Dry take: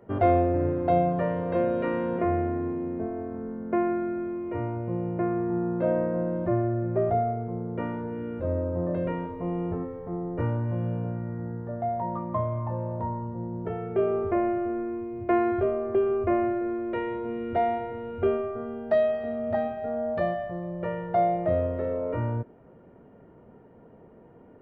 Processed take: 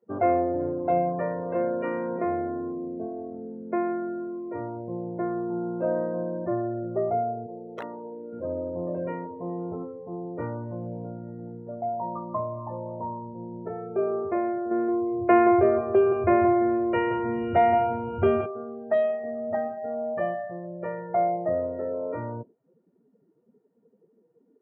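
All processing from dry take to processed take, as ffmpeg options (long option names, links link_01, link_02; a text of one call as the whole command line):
ffmpeg -i in.wav -filter_complex "[0:a]asettb=1/sr,asplit=3[link_01][link_02][link_03];[link_01]atrim=end=7.464[link_04];[link_02]atrim=start=7.46:end=8.33,asetpts=PTS-STARTPTS,afade=type=in:duration=0.004:curve=qsin,afade=type=out:start_time=0.866:duration=0.004:curve=qsin,bandpass=frequency=620:width_type=q:width=0.81,aeval=exprs='(mod(18.8*val(0)+1,2)-1)/18.8':channel_layout=same[link_05];[link_03]atrim=start=8.326[link_06];[link_04][link_05]acrossfade=duration=0.004:curve1=hsin:curve2=qsin[link_07];[link_07][link_06]acrossfade=duration=0.004:curve1=qsin:curve2=hsin,asettb=1/sr,asplit=3[link_08][link_09][link_10];[link_08]atrim=end=14.714[link_11];[link_09]atrim=start=14.71:end=18.46,asetpts=PTS-STARTPTS,afade=type=in:duration=0.004:curve=qsin,afade=type=out:start_time=3.746:duration=0.004:curve=qsin,asubboost=boost=6:cutoff=150,acontrast=89,aecho=1:1:174:0.355,atrim=end_sample=165375[link_12];[link_10]atrim=start=18.456[link_13];[link_11][link_12]acrossfade=duration=0.004:curve1=hsin:curve2=qsin[link_14];[link_14][link_13]acrossfade=duration=0.004:curve1=qsin:curve2=hsin,highpass=110,afftdn=noise_reduction=24:noise_floor=-39,lowshelf=frequency=160:gain=-10" out.wav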